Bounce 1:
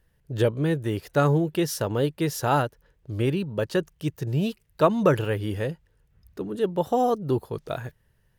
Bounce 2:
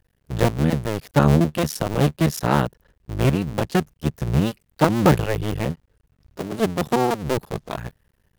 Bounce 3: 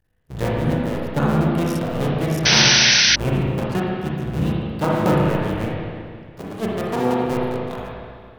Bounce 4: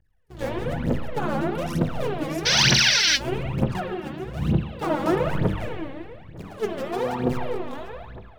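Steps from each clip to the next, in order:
cycle switcher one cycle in 2, muted; dynamic bell 150 Hz, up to +7 dB, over -41 dBFS, Q 1.2; trim +4 dB
spring tank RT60 2.1 s, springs 32/36/58 ms, chirp 55 ms, DRR -5 dB; painted sound noise, 2.45–3.16 s, 1.4–6.2 kHz -8 dBFS; trim -6.5 dB
treble shelf 10 kHz -6.5 dB; phaser 1.1 Hz, delay 3.8 ms, feedback 78%; trim -8 dB

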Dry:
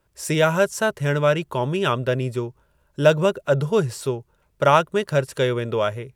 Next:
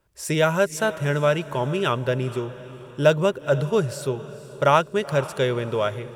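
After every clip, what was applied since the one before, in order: echo that smears into a reverb 475 ms, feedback 43%, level -15.5 dB; trim -1.5 dB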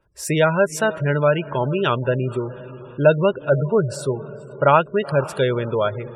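spectral gate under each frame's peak -25 dB strong; trim +3 dB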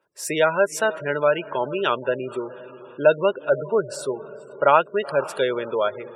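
high-pass 340 Hz 12 dB/octave; trim -1 dB

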